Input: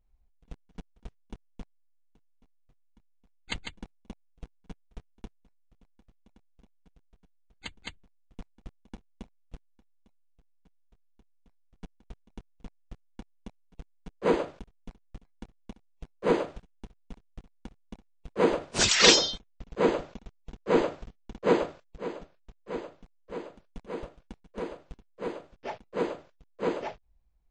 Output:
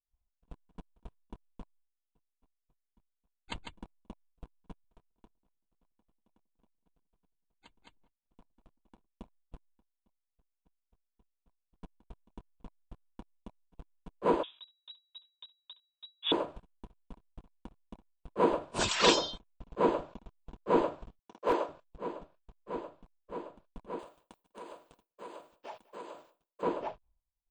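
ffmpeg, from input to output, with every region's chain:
-filter_complex "[0:a]asettb=1/sr,asplit=3[a][b][c];[a]atrim=end=4.844[d];[b]atrim=start=4.84:end=9.07,asetpts=PTS-STARTPTS,afade=t=in:d=0.004:c=qsin,afade=t=out:st=4.226:d=0.004:c=qsin,equalizer=f=66:w=0.69:g=-7.5,acompressor=threshold=-57dB:ratio=2:attack=3.2:release=140:knee=1:detection=peak,asplit=2[e][f];[f]adelay=192,lowpass=f=860:p=1,volume=-13dB,asplit=2[g][h];[h]adelay=192,lowpass=f=860:p=1,volume=0.36,asplit=2[i][j];[j]adelay=192,lowpass=f=860:p=1,volume=0.36,asplit=2[k][l];[l]adelay=192,lowpass=f=860:p=1,volume=0.36[m];[e][g][i][k][m]amix=inputs=5:normalize=0,atrim=end_sample=186543[n];[c]atrim=start=9.066[o];[d][n]acrossfade=d=0.004:c1=hsin:c2=qsin[p];[p][o]acrossfade=d=0.004:c1=qsin:c2=hsin,asettb=1/sr,asplit=3[q][r][s];[q]atrim=end=14.434[t];[r]atrim=start=14.43:end=16.32,asetpts=PTS-STARTPTS,afade=t=in:d=0.004:c=qsin,afade=t=out:st=1.886:d=0.004:c=qsin,highshelf=f=2.3k:g=-6,lowpass=f=3.3k:t=q:w=0.5098,lowpass=f=3.3k:t=q:w=0.6013,lowpass=f=3.3k:t=q:w=0.9,lowpass=f=3.3k:t=q:w=2.563,afreqshift=-3900[u];[s]atrim=start=16.316[v];[t][u]acrossfade=d=0.004:c1=hsin:c2=qsin[w];[w][v]acrossfade=d=0.004:c1=qsin:c2=hsin,asettb=1/sr,asplit=3[x][y][z];[x]atrim=end=21.194[aa];[y]atrim=start=21.19:end=21.69,asetpts=PTS-STARTPTS,afade=t=in:d=0.004:c=qsin,afade=t=out:st=0.496:d=0.004:c=qsin,highpass=380,equalizer=f=5.7k:w=6.8:g=12,aeval=exprs='0.133*(abs(mod(val(0)/0.133+3,4)-2)-1)':c=same[ab];[z]atrim=start=21.686[ac];[aa][ab]acrossfade=d=0.004:c1=hsin:c2=qsin[ad];[ad][ac]acrossfade=d=0.004:c1=qsin:c2=hsin,asettb=1/sr,asplit=3[ae][af][ag];[ae]atrim=end=23.994[ah];[af]atrim=start=23.99:end=26.63,asetpts=PTS-STARTPTS,afade=t=in:d=0.004:c=qsin,afade=t=out:st=2.636:d=0.004:c=qsin,acompressor=threshold=-37dB:ratio=5:attack=3.2:release=140:knee=1:detection=peak,aemphasis=mode=production:type=riaa,aecho=1:1:199|398:0.0841|0.021,atrim=end_sample=116424[ai];[ag]atrim=start=26.626[aj];[ah][ai]acrossfade=d=0.004:c1=hsin:c2=qsin[ak];[ak][aj]acrossfade=d=0.004:c1=qsin:c2=hsin,equalizer=f=5.2k:t=o:w=0.85:g=-6,agate=range=-33dB:threshold=-56dB:ratio=3:detection=peak,equalizer=f=315:t=o:w=0.33:g=3,equalizer=f=630:t=o:w=0.33:g=4,equalizer=f=1k:t=o:w=0.33:g=9,equalizer=f=2k:t=o:w=0.33:g=-7,equalizer=f=6.3k:t=o:w=0.33:g=-4,volume=-5dB"

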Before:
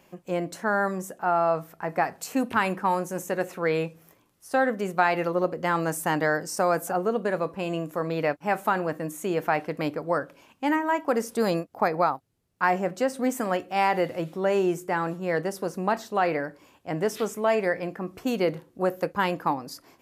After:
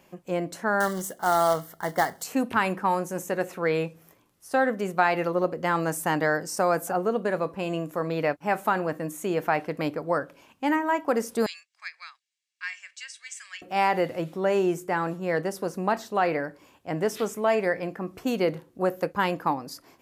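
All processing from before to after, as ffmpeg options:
-filter_complex "[0:a]asettb=1/sr,asplit=3[a][b][c];[a]atrim=end=0.804[d];[b]atrim=start=0.8:end=2.23,asetpts=PTS-STARTPTS,afade=t=in:d=0.004:c=qsin,afade=t=out:st=1.426:d=0.004:c=qsin,highshelf=f=2.6k:g=6.5,acrusher=bits=3:mode=log:mix=0:aa=0.000001,asuperstop=centerf=2500:order=20:qfactor=4.3[e];[c]atrim=start=2.226[f];[d][e]acrossfade=d=0.004:c1=hsin:c2=qsin[g];[g][f]acrossfade=d=0.004:c1=qsin:c2=hsin,asettb=1/sr,asplit=3[h][i][j];[h]atrim=end=11.464[k];[i]atrim=start=11.46:end=13.62,asetpts=PTS-STARTPTS,afade=t=in:d=0.004:c=qsin,afade=t=out:st=2.156:d=0.004:c=qsin,asuperpass=centerf=4100:order=8:qfactor=0.65,aecho=1:1:1.8:0.38,atrim=end_sample=95256[l];[j]atrim=start=13.616[m];[k][l]acrossfade=d=0.004:c1=hsin:c2=qsin[n];[n][m]acrossfade=d=0.004:c1=qsin:c2=hsin"

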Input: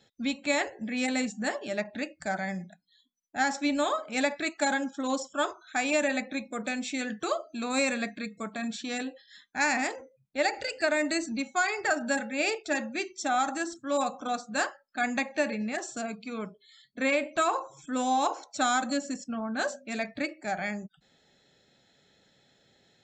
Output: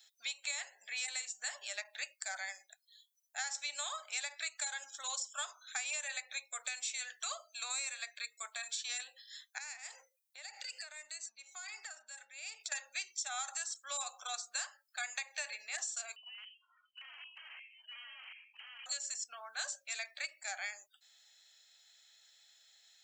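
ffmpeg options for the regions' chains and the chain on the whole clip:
-filter_complex "[0:a]asettb=1/sr,asplit=3[a][b][c];[a]atrim=end=9.584[d];[b]atrim=start=9.58:end=12.72,asetpts=PTS-STARTPTS,afade=t=in:d=0.004:c=qsin,afade=t=out:st=3.136:d=0.004:c=qsin,equalizer=f=220:t=o:w=0.49:g=11.5,acompressor=threshold=-39dB:ratio=20:attack=3.2:release=140:knee=1:detection=peak[e];[c]atrim=start=12.716[f];[d][e]acrossfade=d=0.004:c1=hsin:c2=qsin[g];[g][f]acrossfade=d=0.004:c1=qsin:c2=hsin,asettb=1/sr,asplit=3[h][i][j];[h]atrim=end=16.164[k];[i]atrim=start=16.16:end=18.86,asetpts=PTS-STARTPTS,afade=t=in:d=0.004:c=qsin,afade=t=out:st=2.696:d=0.004:c=qsin,aeval=exprs='(mod(21.1*val(0)+1,2)-1)/21.1':c=same,lowpass=f=2.7k:t=q:w=0.5098,lowpass=f=2.7k:t=q:w=0.6013,lowpass=f=2.7k:t=q:w=0.9,lowpass=f=2.7k:t=q:w=2.563,afreqshift=-3200,acompressor=threshold=-59dB:ratio=2:attack=3.2:release=140:knee=1:detection=peak[l];[j]atrim=start=18.856[m];[k][l]acrossfade=d=0.004:c1=hsin:c2=qsin[n];[n][m]acrossfade=d=0.004:c1=qsin:c2=hsin,highpass=f=660:w=0.5412,highpass=f=660:w=1.3066,aderivative,acompressor=threshold=-44dB:ratio=6,volume=8dB"

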